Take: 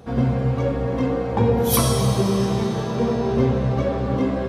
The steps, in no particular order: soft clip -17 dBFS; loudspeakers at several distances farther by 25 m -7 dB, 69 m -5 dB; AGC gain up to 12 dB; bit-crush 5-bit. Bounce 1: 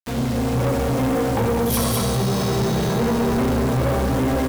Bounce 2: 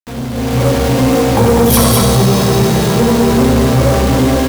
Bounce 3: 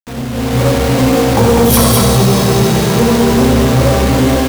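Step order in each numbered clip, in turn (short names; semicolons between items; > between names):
loudspeakers at several distances > AGC > bit-crush > soft clip; loudspeakers at several distances > bit-crush > soft clip > AGC; loudspeakers at several distances > soft clip > bit-crush > AGC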